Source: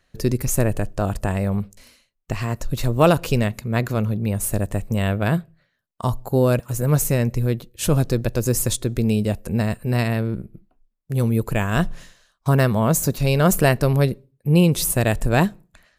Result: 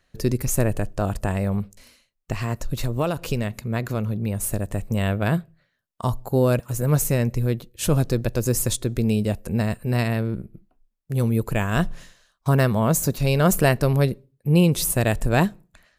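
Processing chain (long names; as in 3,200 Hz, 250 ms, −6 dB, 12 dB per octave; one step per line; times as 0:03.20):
0:02.54–0:04.78: downward compressor 6 to 1, threshold −18 dBFS, peak gain reduction 9 dB
level −1.5 dB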